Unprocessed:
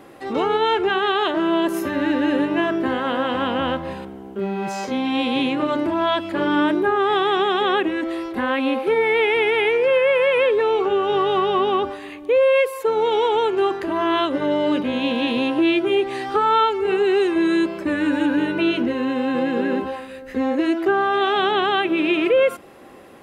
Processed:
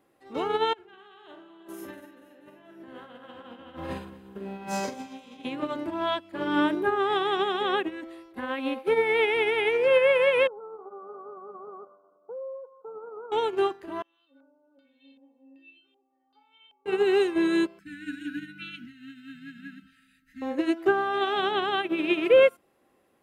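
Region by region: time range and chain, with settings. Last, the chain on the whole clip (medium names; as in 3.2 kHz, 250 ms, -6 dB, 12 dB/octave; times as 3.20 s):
0.73–5.45 s: compressor with a negative ratio -29 dBFS + doubling 46 ms -5 dB + echo whose repeats swap between lows and highs 120 ms, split 800 Hz, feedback 76%, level -8 dB
10.47–13.32 s: comb filter that takes the minimum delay 1.8 ms + compression 5:1, threshold -22 dBFS + brick-wall FIR band-pass 160–1500 Hz
14.02–16.86 s: bass shelf 180 Hz -8.5 dB + inharmonic resonator 270 Hz, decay 0.64 s, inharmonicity 0.008 + LFO low-pass square 1.3 Hz 790–3800 Hz
17.79–20.42 s: brick-wall FIR band-stop 300–1300 Hz + comb 6 ms, depth 41%
whole clip: treble shelf 8.8 kHz +8 dB; upward expansion 2.5:1, over -29 dBFS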